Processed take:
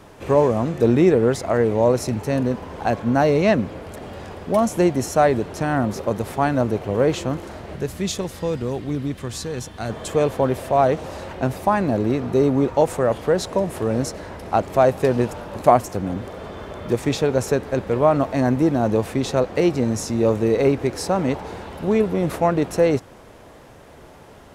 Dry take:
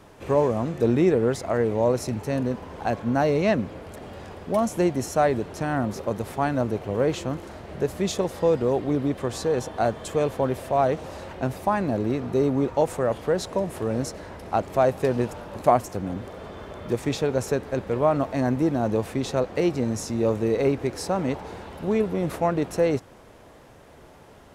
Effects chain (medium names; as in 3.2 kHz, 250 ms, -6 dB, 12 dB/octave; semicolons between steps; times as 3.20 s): 7.75–9.89 s: peaking EQ 620 Hz -7.5 dB -> -14 dB 2.4 oct; trim +4.5 dB